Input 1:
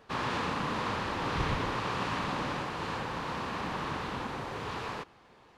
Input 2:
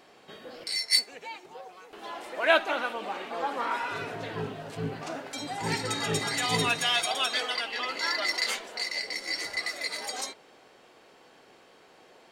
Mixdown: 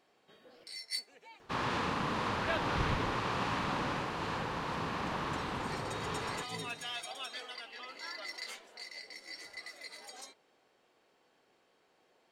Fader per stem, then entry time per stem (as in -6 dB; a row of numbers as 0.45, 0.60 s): -1.5, -14.5 dB; 1.40, 0.00 s